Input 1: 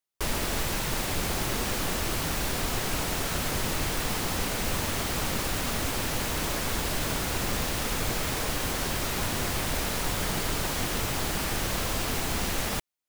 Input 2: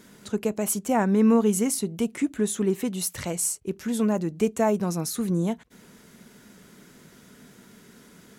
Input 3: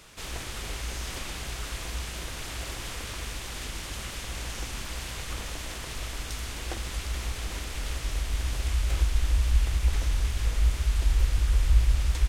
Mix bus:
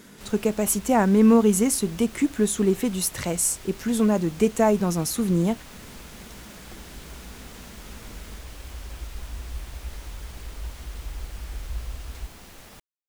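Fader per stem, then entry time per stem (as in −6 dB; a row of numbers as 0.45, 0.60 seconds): −17.0, +3.0, −12.0 decibels; 0.00, 0.00, 0.00 seconds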